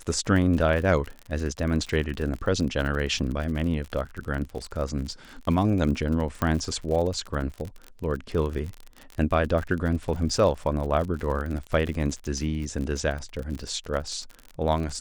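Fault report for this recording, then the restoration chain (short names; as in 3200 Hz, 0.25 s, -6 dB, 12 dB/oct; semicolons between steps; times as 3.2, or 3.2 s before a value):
crackle 50/s -31 dBFS
6.42 pop -13 dBFS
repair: de-click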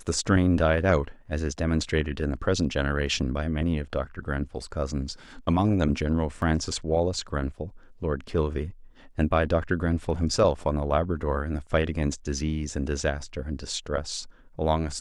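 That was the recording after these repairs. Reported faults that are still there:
6.42 pop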